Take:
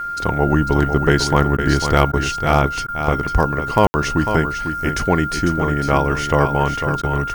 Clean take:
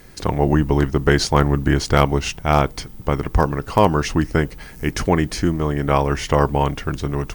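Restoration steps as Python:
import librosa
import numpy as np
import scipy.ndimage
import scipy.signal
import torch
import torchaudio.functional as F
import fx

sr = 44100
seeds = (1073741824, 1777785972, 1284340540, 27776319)

y = fx.notch(x, sr, hz=1400.0, q=30.0)
y = fx.fix_ambience(y, sr, seeds[0], print_start_s=2.69, print_end_s=3.19, start_s=3.87, end_s=3.94)
y = fx.fix_interpolate(y, sr, at_s=(1.57, 2.12, 2.87, 7.02), length_ms=12.0)
y = fx.fix_echo_inverse(y, sr, delay_ms=499, level_db=-8.0)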